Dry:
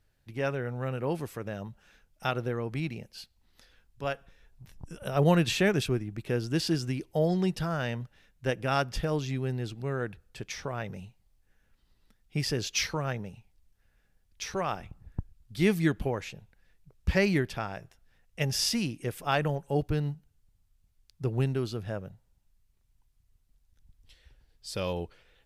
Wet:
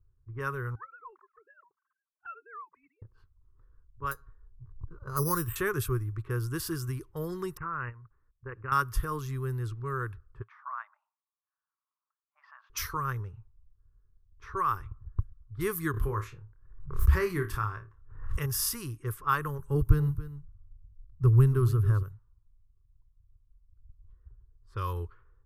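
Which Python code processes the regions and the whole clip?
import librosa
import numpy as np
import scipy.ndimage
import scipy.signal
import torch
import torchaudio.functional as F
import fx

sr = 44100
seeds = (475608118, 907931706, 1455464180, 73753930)

y = fx.chain(x, sr, fx.sine_speech(),
    fx.highpass(hz=1200.0, slope=12),
    fx.env_flanger(rest_ms=4.9, full_db=-34.5), at=(0.75, 3.02))
y = fx.chain(y, sr, fx.spacing_loss(db_at_10k=23),
    fx.resample_bad(factor=8, down='filtered', up='hold'), at=(4.11, 5.56))
y = fx.chain(y, sr, fx.low_shelf(hz=210.0, db=-4.5),
    fx.level_steps(step_db=17),
    fx.resample_bad(factor=8, down='none', up='filtered'), at=(7.57, 8.72))
y = fx.chain(y, sr, fx.brickwall_highpass(low_hz=600.0),
    fx.air_absorb(metres=240.0), at=(10.42, 12.7))
y = fx.chain(y, sr, fx.high_shelf(hz=5700.0, db=-6.0),
    fx.room_flutter(wall_m=4.8, rt60_s=0.23),
    fx.pre_swell(db_per_s=80.0), at=(15.91, 18.46))
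y = fx.chain(y, sr, fx.low_shelf(hz=280.0, db=10.5),
    fx.echo_single(ms=277, db=-14.5), at=(19.59, 22.03))
y = fx.env_lowpass(y, sr, base_hz=510.0, full_db=-27.5)
y = fx.curve_eq(y, sr, hz=(110.0, 200.0, 400.0, 700.0, 1100.0, 2400.0, 4500.0, 7200.0, 14000.0), db=(0, -23, -8, -30, 5, -18, -16, -8, 10))
y = F.gain(torch.from_numpy(y), 6.0).numpy()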